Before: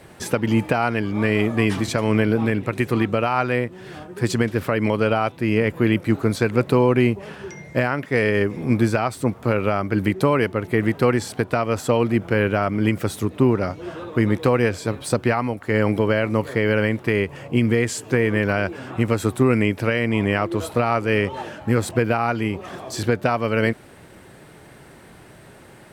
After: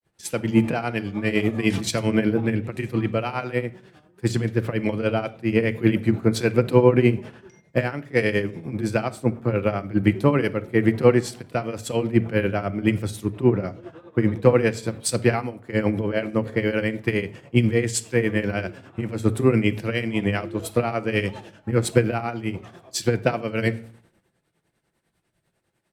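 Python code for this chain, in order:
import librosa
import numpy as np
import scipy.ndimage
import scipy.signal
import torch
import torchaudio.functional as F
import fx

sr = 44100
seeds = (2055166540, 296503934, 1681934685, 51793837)

y = fx.dynamic_eq(x, sr, hz=1100.0, q=1.2, threshold_db=-36.0, ratio=4.0, max_db=-6)
y = fx.granulator(y, sr, seeds[0], grain_ms=139.0, per_s=10.0, spray_ms=14.0, spread_st=0)
y = fx.room_shoebox(y, sr, seeds[1], volume_m3=2300.0, walls='furnished', distance_m=0.77)
y = fx.band_widen(y, sr, depth_pct=100)
y = y * 10.0 ** (1.0 / 20.0)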